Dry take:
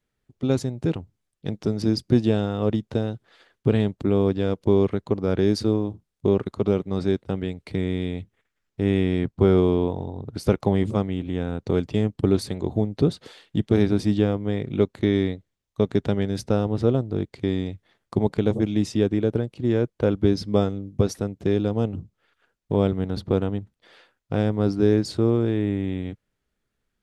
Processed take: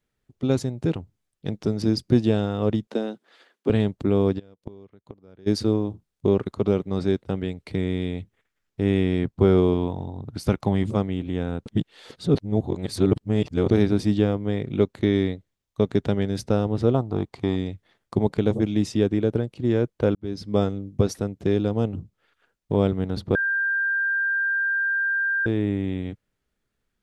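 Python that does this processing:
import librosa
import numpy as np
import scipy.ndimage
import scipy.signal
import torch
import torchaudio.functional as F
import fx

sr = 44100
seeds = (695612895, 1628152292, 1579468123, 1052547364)

y = fx.steep_highpass(x, sr, hz=200.0, slope=36, at=(2.87, 3.7))
y = fx.gate_flip(y, sr, shuts_db=-21.0, range_db=-27, at=(4.38, 5.46), fade=0.02)
y = fx.peak_eq(y, sr, hz=450.0, db=-6.0, octaves=0.77, at=(9.74, 10.89))
y = fx.band_shelf(y, sr, hz=930.0, db=9.5, octaves=1.0, at=(16.94, 17.56))
y = fx.edit(y, sr, fx.reverse_span(start_s=11.66, length_s=2.05),
    fx.fade_in_span(start_s=20.15, length_s=0.49),
    fx.bleep(start_s=23.35, length_s=2.11, hz=1590.0, db=-20.5), tone=tone)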